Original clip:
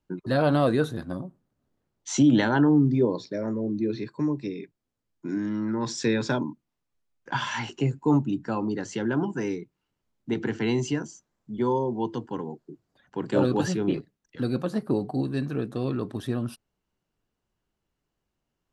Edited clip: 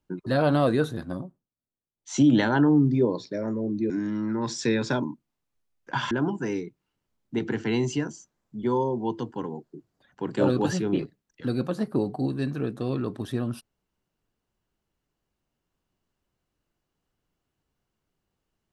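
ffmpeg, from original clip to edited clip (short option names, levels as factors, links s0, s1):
-filter_complex "[0:a]asplit=5[s0][s1][s2][s3][s4];[s0]atrim=end=1.53,asetpts=PTS-STARTPTS,afade=t=out:st=1.22:d=0.31:c=qua:silence=0.0891251[s5];[s1]atrim=start=1.53:end=1.9,asetpts=PTS-STARTPTS,volume=0.0891[s6];[s2]atrim=start=1.9:end=3.902,asetpts=PTS-STARTPTS,afade=t=in:d=0.31:c=qua:silence=0.0891251[s7];[s3]atrim=start=5.288:end=7.502[s8];[s4]atrim=start=9.058[s9];[s5][s6][s7]concat=n=3:v=0:a=1[s10];[s10][s8]acrossfade=d=0.004:c1=hsin:c2=hsin[s11];[s11][s9]acrossfade=d=0.004:c1=hsin:c2=hsin"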